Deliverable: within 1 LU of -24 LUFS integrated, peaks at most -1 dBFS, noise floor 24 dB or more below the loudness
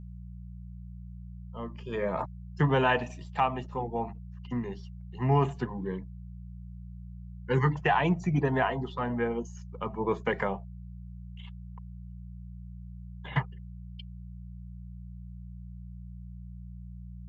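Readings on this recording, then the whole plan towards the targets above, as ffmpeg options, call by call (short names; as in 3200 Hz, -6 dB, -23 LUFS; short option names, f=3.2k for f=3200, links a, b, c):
hum 60 Hz; harmonics up to 180 Hz; hum level -40 dBFS; loudness -30.0 LUFS; peak -13.0 dBFS; loudness target -24.0 LUFS
-> -af "bandreject=f=60:t=h:w=4,bandreject=f=120:t=h:w=4,bandreject=f=180:t=h:w=4"
-af "volume=6dB"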